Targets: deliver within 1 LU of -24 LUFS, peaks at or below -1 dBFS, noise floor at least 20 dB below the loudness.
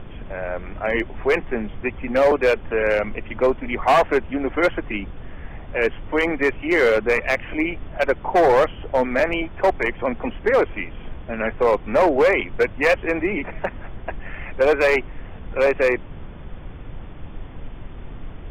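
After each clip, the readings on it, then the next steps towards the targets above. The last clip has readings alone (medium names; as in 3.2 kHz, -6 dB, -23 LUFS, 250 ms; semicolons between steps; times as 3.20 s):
clipped samples 1.3%; clipping level -11.0 dBFS; noise floor -37 dBFS; noise floor target -41 dBFS; loudness -21.0 LUFS; peak level -11.0 dBFS; loudness target -24.0 LUFS
-> clip repair -11 dBFS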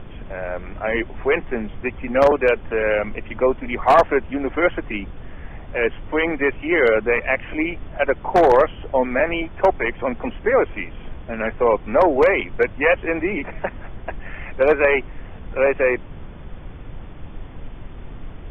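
clipped samples 0.0%; noise floor -37 dBFS; noise floor target -40 dBFS
-> noise print and reduce 6 dB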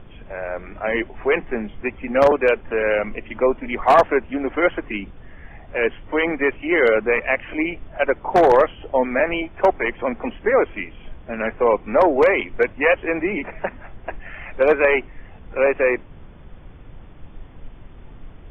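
noise floor -43 dBFS; loudness -20.0 LUFS; peak level -2.0 dBFS; loudness target -24.0 LUFS
-> trim -4 dB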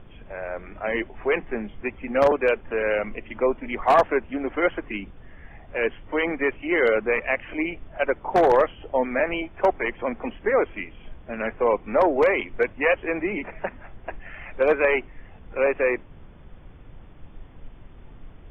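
loudness -24.0 LUFS; peak level -6.0 dBFS; noise floor -47 dBFS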